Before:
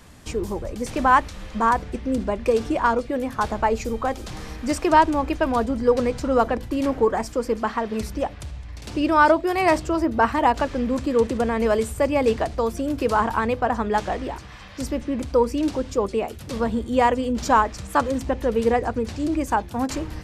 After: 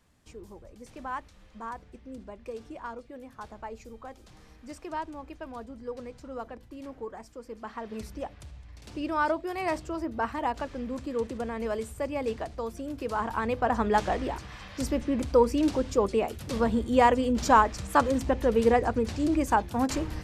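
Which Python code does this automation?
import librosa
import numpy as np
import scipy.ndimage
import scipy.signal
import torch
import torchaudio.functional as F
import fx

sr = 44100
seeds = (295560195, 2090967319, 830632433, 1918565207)

y = fx.gain(x, sr, db=fx.line((7.46, -19.0), (7.9, -11.0), (13.08, -11.0), (13.82, -2.0)))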